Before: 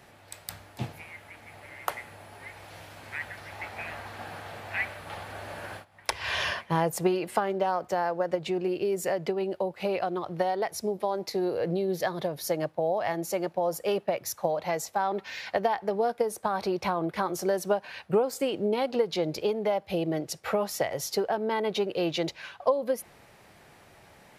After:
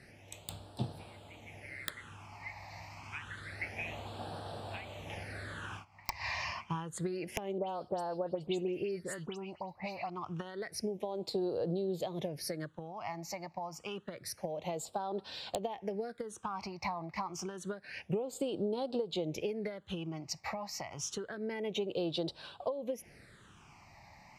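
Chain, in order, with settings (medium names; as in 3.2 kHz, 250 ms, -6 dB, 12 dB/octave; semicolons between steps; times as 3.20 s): low-pass 9.7 kHz 12 dB/octave; compression 6:1, threshold -31 dBFS, peak gain reduction 12.5 dB; integer overflow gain 17.5 dB; phase shifter stages 8, 0.28 Hz, lowest notch 430–2100 Hz; 7.58–10.10 s: phase dispersion highs, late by 104 ms, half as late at 2.9 kHz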